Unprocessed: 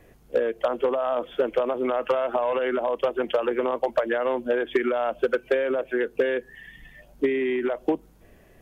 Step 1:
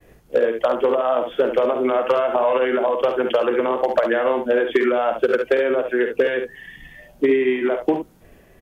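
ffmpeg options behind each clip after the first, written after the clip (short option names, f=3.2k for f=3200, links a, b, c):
-af "agate=range=-33dB:threshold=-51dB:ratio=3:detection=peak,aecho=1:1:52|70:0.335|0.422,volume=4.5dB"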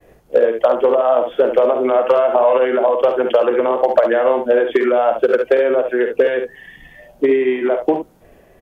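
-af "equalizer=f=630:w=0.9:g=7,volume=-1dB"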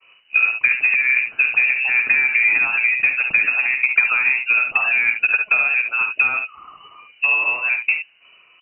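-af "highshelf=f=2.1k:g=7.5,lowpass=f=2.6k:t=q:w=0.5098,lowpass=f=2.6k:t=q:w=0.6013,lowpass=f=2.6k:t=q:w=0.9,lowpass=f=2.6k:t=q:w=2.563,afreqshift=-3000,volume=-4dB"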